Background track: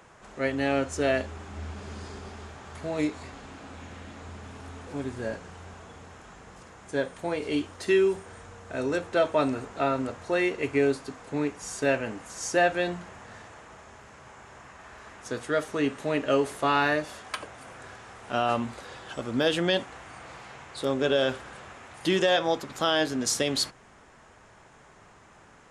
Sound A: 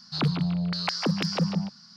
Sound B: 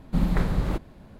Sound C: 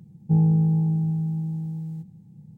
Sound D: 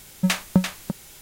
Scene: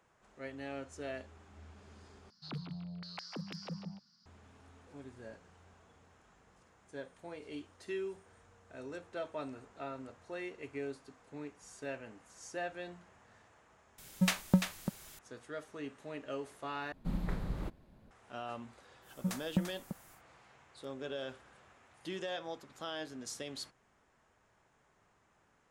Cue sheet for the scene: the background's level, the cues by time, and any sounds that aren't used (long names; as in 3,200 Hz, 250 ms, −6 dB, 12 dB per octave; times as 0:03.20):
background track −17 dB
0:02.30: overwrite with A −17.5 dB
0:13.98: mix in D −8 dB
0:16.92: overwrite with B −13 dB
0:19.01: mix in D −13.5 dB, fades 0.10 s + parametric band 2,700 Hz −12 dB 1.5 octaves
not used: C